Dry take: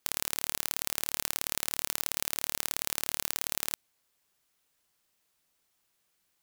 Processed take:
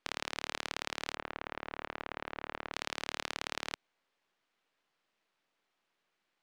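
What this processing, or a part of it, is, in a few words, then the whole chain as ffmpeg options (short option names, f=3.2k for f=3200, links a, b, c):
crystal radio: -filter_complex "[0:a]highpass=220,lowpass=3k,aeval=exprs='if(lt(val(0),0),0.447*val(0),val(0))':c=same,asplit=3[a][b][c];[a]afade=t=out:st=1.14:d=0.02[d];[b]lowpass=1.8k,afade=t=in:st=1.14:d=0.02,afade=t=out:st=2.72:d=0.02[e];[c]afade=t=in:st=2.72:d=0.02[f];[d][e][f]amix=inputs=3:normalize=0,volume=3.5dB"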